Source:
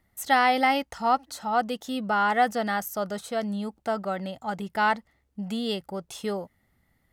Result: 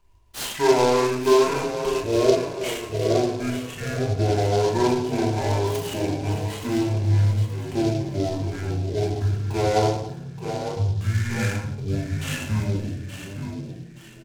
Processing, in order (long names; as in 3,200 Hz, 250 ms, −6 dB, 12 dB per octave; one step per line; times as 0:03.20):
delay that plays each chunk backwards 203 ms, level −12.5 dB
parametric band 5,600 Hz +12.5 dB 0.38 octaves
transient designer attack +2 dB, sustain −12 dB
in parallel at −2.5 dB: downward compressor, threshold −29 dBFS, peak gain reduction 13.5 dB
on the sum: low shelf with overshoot 210 Hz +6 dB, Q 3
on a send: echo with shifted repeats 437 ms, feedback 38%, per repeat +74 Hz, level −9.5 dB
on the sum: rectangular room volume 350 cubic metres, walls furnished, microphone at 3.7 metres
wrong playback speed 15 ips tape played at 7.5 ips
short delay modulated by noise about 4,100 Hz, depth 0.042 ms
level −7 dB